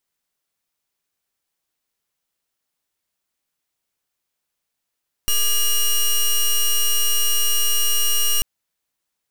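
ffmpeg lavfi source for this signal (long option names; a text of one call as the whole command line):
ffmpeg -f lavfi -i "aevalsrc='0.141*(2*lt(mod(2860*t,1),0.11)-1)':duration=3.14:sample_rate=44100" out.wav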